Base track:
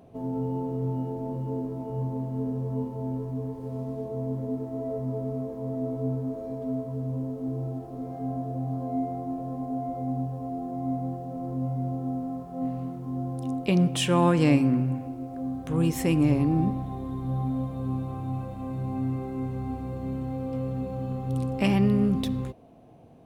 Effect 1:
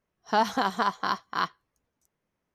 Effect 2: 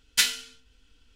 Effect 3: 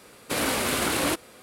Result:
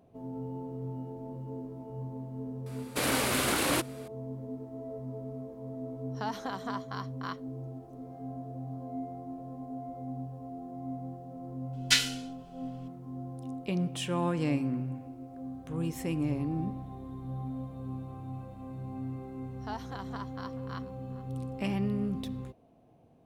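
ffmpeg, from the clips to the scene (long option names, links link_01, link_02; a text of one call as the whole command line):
ffmpeg -i bed.wav -i cue0.wav -i cue1.wav -i cue2.wav -filter_complex "[1:a]asplit=2[link_01][link_02];[0:a]volume=-9dB[link_03];[link_01]alimiter=limit=-15.5dB:level=0:latency=1:release=47[link_04];[2:a]acrossover=split=7300[link_05][link_06];[link_06]acompressor=threshold=-36dB:ratio=4:attack=1:release=60[link_07];[link_05][link_07]amix=inputs=2:normalize=0[link_08];[link_02]asplit=2[link_09][link_10];[link_10]adelay=431.5,volume=-17dB,highshelf=frequency=4000:gain=-9.71[link_11];[link_09][link_11]amix=inputs=2:normalize=0[link_12];[3:a]atrim=end=1.42,asetpts=PTS-STARTPTS,volume=-3dB,afade=type=in:duration=0.004:curve=hsin,afade=type=out:start_time=1.416:duration=0.004:curve=hsin,adelay=2660[link_13];[link_04]atrim=end=2.54,asetpts=PTS-STARTPTS,volume=-9.5dB,afade=type=in:duration=0.004:curve=hsin,afade=type=out:start_time=2.536:duration=0.004:curve=hsin,adelay=5880[link_14];[link_08]atrim=end=1.15,asetpts=PTS-STARTPTS,volume=-1dB,afade=type=in:duration=0.004:curve=hsin,afade=type=out:start_time=1.146:duration=0.004:curve=hsin,adelay=11730[link_15];[link_12]atrim=end=2.54,asetpts=PTS-STARTPTS,volume=-16.5dB,afade=type=in:duration=0.004:curve=hsin,afade=type=out:start_time=2.536:duration=0.004:curve=hsin,adelay=19340[link_16];[link_03][link_13][link_14][link_15][link_16]amix=inputs=5:normalize=0" out.wav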